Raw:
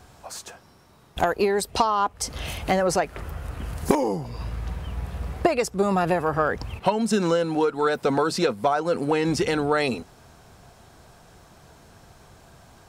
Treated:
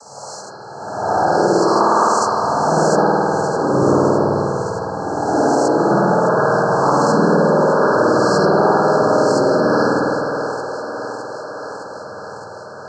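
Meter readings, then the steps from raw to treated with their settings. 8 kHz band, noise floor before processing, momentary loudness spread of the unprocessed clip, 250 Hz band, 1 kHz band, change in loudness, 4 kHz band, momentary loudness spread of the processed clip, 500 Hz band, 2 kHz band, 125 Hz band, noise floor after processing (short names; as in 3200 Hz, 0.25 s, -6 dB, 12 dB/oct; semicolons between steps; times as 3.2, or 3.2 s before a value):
+5.0 dB, -53 dBFS, 13 LU, +8.5 dB, +10.5 dB, +9.0 dB, +3.0 dB, 17 LU, +9.5 dB, +8.0 dB, +8.0 dB, -34 dBFS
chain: spectral swells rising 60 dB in 1.45 s; noise vocoder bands 12; brick-wall FIR band-stop 1700–4100 Hz; on a send: thinning echo 0.611 s, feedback 78%, high-pass 240 Hz, level -12 dB; on the sum: spring tank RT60 2.8 s, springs 51 ms, chirp 25 ms, DRR -5.5 dB; in parallel at -1.5 dB: limiter -8 dBFS, peak gain reduction 8.5 dB; on the sum: gain -5 dB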